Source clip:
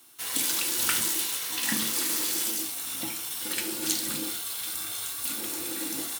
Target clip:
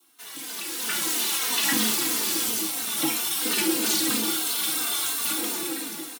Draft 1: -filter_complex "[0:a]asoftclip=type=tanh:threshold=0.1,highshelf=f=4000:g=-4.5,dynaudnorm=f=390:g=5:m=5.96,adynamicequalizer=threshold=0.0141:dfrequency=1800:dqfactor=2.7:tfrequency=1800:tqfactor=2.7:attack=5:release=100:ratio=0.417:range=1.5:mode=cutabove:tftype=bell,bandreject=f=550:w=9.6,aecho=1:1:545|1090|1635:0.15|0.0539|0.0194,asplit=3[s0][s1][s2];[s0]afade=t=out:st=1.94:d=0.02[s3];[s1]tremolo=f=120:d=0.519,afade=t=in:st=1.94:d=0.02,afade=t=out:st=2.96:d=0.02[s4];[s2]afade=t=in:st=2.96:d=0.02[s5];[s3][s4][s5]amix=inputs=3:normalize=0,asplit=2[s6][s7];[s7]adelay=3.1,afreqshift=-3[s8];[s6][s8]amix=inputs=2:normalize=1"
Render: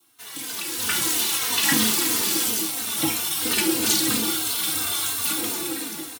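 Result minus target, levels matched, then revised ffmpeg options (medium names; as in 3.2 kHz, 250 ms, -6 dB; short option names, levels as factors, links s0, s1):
125 Hz band +5.5 dB; saturation: distortion -8 dB
-filter_complex "[0:a]asoftclip=type=tanh:threshold=0.0376,highpass=f=170:w=0.5412,highpass=f=170:w=1.3066,highshelf=f=4000:g=-4.5,dynaudnorm=f=390:g=5:m=5.96,adynamicequalizer=threshold=0.0141:dfrequency=1800:dqfactor=2.7:tfrequency=1800:tqfactor=2.7:attack=5:release=100:ratio=0.417:range=1.5:mode=cutabove:tftype=bell,bandreject=f=550:w=9.6,aecho=1:1:545|1090|1635:0.15|0.0539|0.0194,asplit=3[s0][s1][s2];[s0]afade=t=out:st=1.94:d=0.02[s3];[s1]tremolo=f=120:d=0.519,afade=t=in:st=1.94:d=0.02,afade=t=out:st=2.96:d=0.02[s4];[s2]afade=t=in:st=2.96:d=0.02[s5];[s3][s4][s5]amix=inputs=3:normalize=0,asplit=2[s6][s7];[s7]adelay=3.1,afreqshift=-3[s8];[s6][s8]amix=inputs=2:normalize=1"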